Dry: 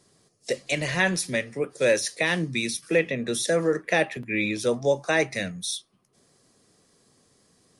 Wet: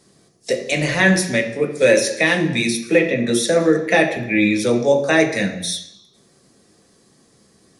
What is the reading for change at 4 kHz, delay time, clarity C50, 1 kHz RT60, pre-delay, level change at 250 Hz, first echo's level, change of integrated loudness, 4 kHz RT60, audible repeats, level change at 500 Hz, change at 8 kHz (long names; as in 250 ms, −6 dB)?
+6.5 dB, no echo audible, 9.0 dB, 0.80 s, 3 ms, +10.5 dB, no echo audible, +8.0 dB, 0.85 s, no echo audible, +7.5 dB, +5.5 dB